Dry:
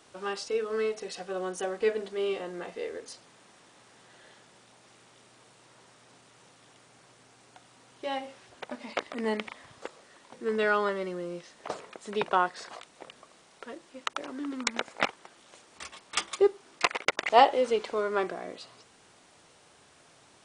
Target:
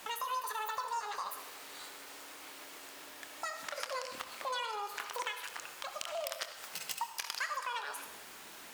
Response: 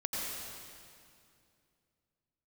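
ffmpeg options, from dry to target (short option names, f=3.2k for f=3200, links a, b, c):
-filter_complex "[0:a]acompressor=threshold=-45dB:ratio=5,asplit=2[a][b];[1:a]atrim=start_sample=2205,adelay=60[c];[b][c]afir=irnorm=-1:irlink=0,volume=-11.5dB[d];[a][d]amix=inputs=2:normalize=0,asetrate=103194,aresample=44100,volume=7.5dB"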